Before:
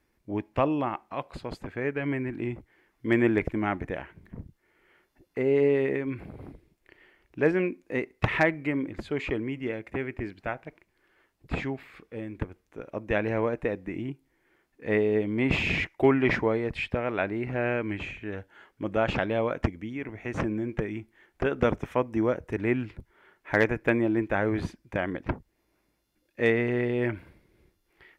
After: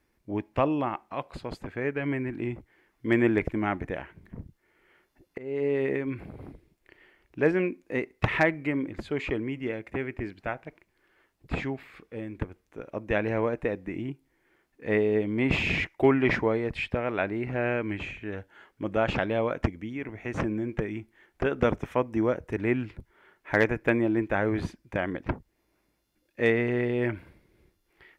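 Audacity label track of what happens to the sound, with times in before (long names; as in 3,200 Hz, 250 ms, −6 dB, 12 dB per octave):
5.380000	5.910000	fade in, from −19.5 dB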